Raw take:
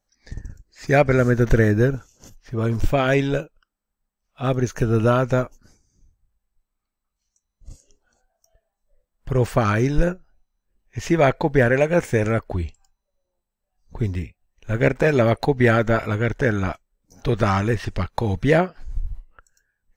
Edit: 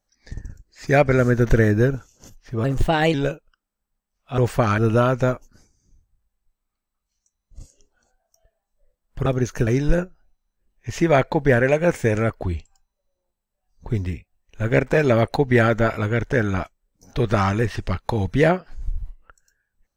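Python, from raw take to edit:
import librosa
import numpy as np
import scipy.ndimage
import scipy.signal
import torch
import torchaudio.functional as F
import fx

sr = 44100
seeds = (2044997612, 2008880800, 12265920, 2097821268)

y = fx.edit(x, sr, fx.speed_span(start_s=2.64, length_s=0.59, speed=1.18),
    fx.swap(start_s=4.47, length_s=0.41, other_s=9.36, other_length_s=0.4), tone=tone)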